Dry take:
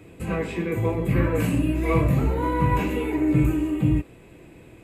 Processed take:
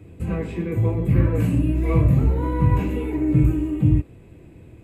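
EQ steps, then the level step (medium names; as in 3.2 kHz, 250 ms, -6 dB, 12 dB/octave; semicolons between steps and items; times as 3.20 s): peaking EQ 89 Hz +7 dB 0.59 oct; bass shelf 410 Hz +10 dB; -6.5 dB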